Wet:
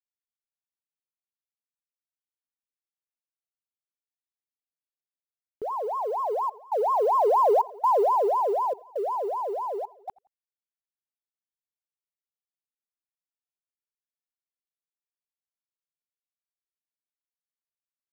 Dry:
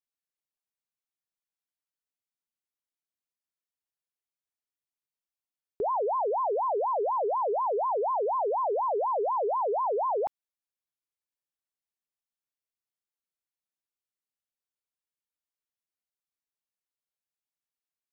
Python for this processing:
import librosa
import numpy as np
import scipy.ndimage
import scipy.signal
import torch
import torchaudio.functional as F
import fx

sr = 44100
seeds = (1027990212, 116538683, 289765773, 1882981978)

p1 = fx.delta_hold(x, sr, step_db=-50.0)
p2 = fx.doppler_pass(p1, sr, speed_mps=11, closest_m=6.2, pass_at_s=7.61)
p3 = fx.step_gate(p2, sr, bpm=134, pattern='xxxxxxxx..', floor_db=-24.0, edge_ms=4.5)
p4 = p3 + fx.echo_feedback(p3, sr, ms=86, feedback_pct=35, wet_db=-23.5, dry=0)
y = p4 * 10.0 ** (8.5 / 20.0)